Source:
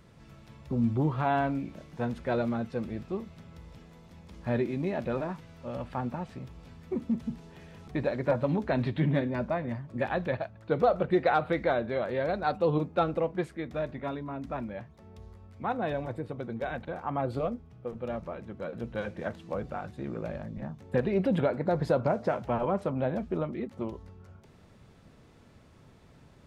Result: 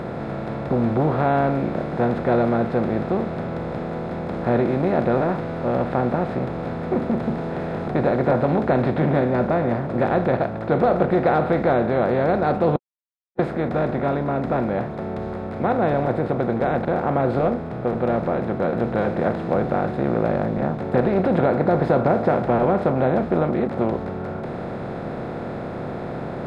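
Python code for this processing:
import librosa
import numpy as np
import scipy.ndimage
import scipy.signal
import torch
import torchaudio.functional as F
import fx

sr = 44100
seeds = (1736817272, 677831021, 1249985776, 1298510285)

y = fx.edit(x, sr, fx.silence(start_s=12.76, length_s=0.63), tone=tone)
y = fx.bin_compress(y, sr, power=0.4)
y = fx.high_shelf(y, sr, hz=2700.0, db=-11.5)
y = y * 10.0 ** (2.5 / 20.0)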